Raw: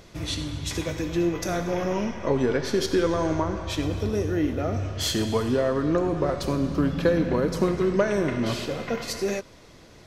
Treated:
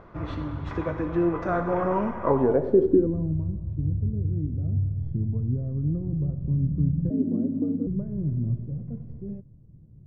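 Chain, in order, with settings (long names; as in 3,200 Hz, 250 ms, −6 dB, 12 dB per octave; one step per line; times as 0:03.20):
stylus tracing distortion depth 0.044 ms
low-pass filter sweep 1,200 Hz → 140 Hz, 0:02.30–0:03.36
0:07.10–0:07.87: frequency shifter +100 Hz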